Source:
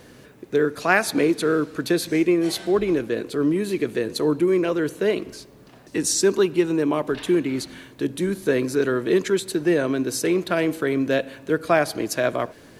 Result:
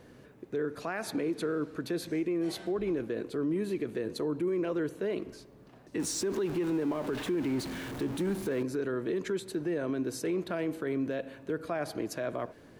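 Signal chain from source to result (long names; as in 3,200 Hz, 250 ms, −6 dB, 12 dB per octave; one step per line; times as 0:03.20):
0:05.99–0:08.63: converter with a step at zero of −27 dBFS
high-shelf EQ 2,200 Hz −8.5 dB
brickwall limiter −18 dBFS, peak gain reduction 12 dB
level −6 dB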